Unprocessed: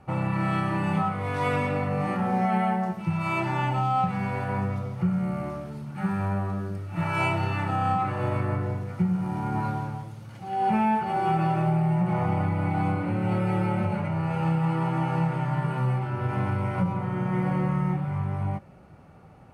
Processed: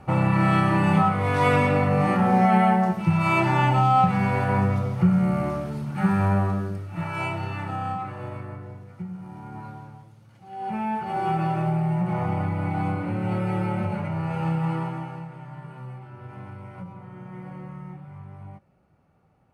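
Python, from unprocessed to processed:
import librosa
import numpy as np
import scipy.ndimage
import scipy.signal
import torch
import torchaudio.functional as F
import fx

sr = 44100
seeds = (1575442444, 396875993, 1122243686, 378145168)

y = fx.gain(x, sr, db=fx.line((6.43, 6.0), (7.11, -3.5), (7.76, -3.5), (8.61, -10.5), (10.4, -10.5), (11.19, -0.5), (14.75, -0.5), (15.26, -13.0)))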